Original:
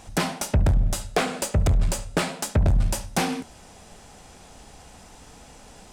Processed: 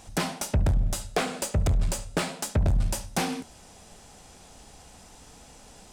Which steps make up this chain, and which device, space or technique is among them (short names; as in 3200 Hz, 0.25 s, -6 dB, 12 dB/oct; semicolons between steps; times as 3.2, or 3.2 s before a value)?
exciter from parts (in parallel at -7 dB: HPF 2700 Hz 12 dB/oct + soft clip -36 dBFS, distortion -5 dB); on the sum: gain -3.5 dB